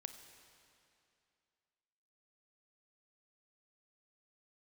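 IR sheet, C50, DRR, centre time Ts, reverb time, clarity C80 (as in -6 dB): 8.5 dB, 8.0 dB, 31 ms, 2.6 s, 9.5 dB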